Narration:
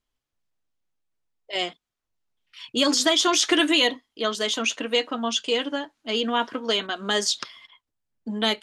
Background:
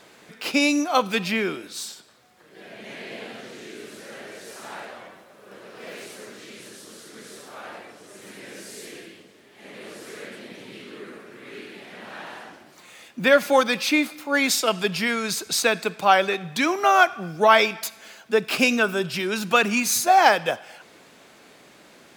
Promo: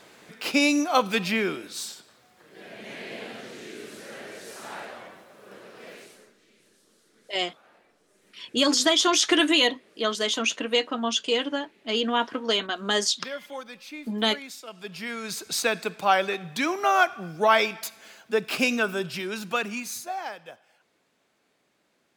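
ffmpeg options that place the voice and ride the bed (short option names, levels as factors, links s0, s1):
-filter_complex "[0:a]adelay=5800,volume=0.944[s0];[1:a]volume=5.31,afade=t=out:st=5.46:d=0.88:silence=0.11885,afade=t=in:st=14.72:d=0.88:silence=0.16788,afade=t=out:st=18.96:d=1.28:silence=0.16788[s1];[s0][s1]amix=inputs=2:normalize=0"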